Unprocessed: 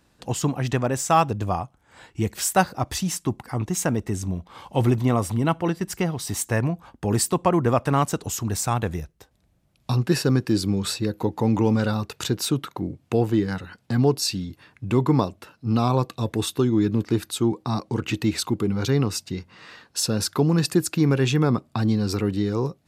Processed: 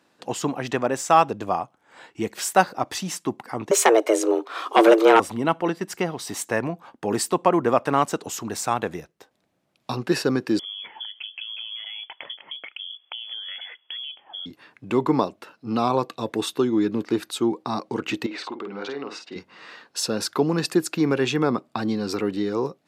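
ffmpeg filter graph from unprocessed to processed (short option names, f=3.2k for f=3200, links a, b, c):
-filter_complex "[0:a]asettb=1/sr,asplit=3[a][b][c];[a]atrim=end=3.714[d];[b]atrim=start=3.71:end=5.2,asetpts=PTS-STARTPTS,afade=t=in:d=0.004:c=qsin,afade=t=out:st=1.486:d=0.004:c=qsin,lowshelf=f=190:g=-8,afreqshift=220,aeval=exprs='0.355*sin(PI/2*2*val(0)/0.355)':c=same[e];[c]atrim=start=5.196[f];[d][e]acrossfade=d=0.004:c1=hsin:c2=qsin[g];[g][f]acrossfade=d=0.004:c1=qsin:c2=hsin,asettb=1/sr,asplit=3[h][i][j];[h]atrim=end=10.594[k];[i]atrim=start=10.59:end=14.46,asetpts=PTS-STARTPTS,afade=t=in:d=0.004:c=qsin,afade=t=out:st=3.866:d=0.004:c=qsin,acompressor=threshold=-31dB:ratio=16:attack=3.2:release=140:knee=1:detection=peak,lowpass=f=3k:t=q:w=0.5098,lowpass=f=3k:t=q:w=0.6013,lowpass=f=3k:t=q:w=0.9,lowpass=f=3k:t=q:w=2.563,afreqshift=-3500[l];[j]atrim=start=14.456[m];[k][l]acrossfade=d=0.004:c1=hsin:c2=qsin[n];[n][m]acrossfade=d=0.004:c1=qsin:c2=hsin,asettb=1/sr,asplit=3[o][p][q];[o]atrim=end=18.264[r];[p]atrim=start=18.26:end=19.36,asetpts=PTS-STARTPTS,afade=t=in:d=0.004:c=qsin,afade=t=out:st=1.096:d=0.004:c=qsin,highpass=340,lowpass=3.3k,acompressor=threshold=-30dB:ratio=5:attack=3.2:release=140:knee=1:detection=peak,asplit=2[s][t];[t]adelay=50,volume=-6dB[u];[s][u]amix=inputs=2:normalize=0,atrim=end_sample=48510[v];[q]atrim=start=19.356[w];[r][v]acrossfade=d=0.004:c1=hsin:c2=qsin[x];[x][w]acrossfade=d=0.004:c1=qsin:c2=hsin,highpass=280,highshelf=f=6.1k:g=-9,volume=2.5dB"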